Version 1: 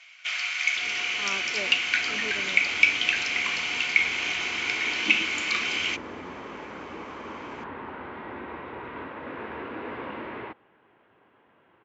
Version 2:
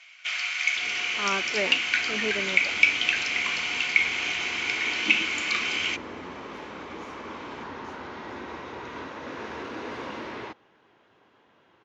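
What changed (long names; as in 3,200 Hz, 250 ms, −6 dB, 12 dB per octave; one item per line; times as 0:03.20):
speech +7.5 dB
second sound: remove low-pass filter 2,800 Hz 24 dB per octave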